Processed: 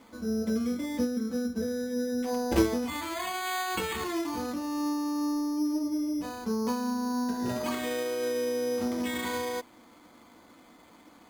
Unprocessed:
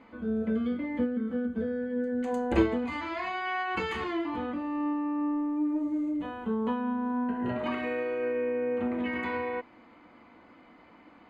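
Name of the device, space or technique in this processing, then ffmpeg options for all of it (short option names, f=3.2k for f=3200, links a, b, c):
crushed at another speed: -af "asetrate=22050,aresample=44100,acrusher=samples=16:mix=1:aa=0.000001,asetrate=88200,aresample=44100"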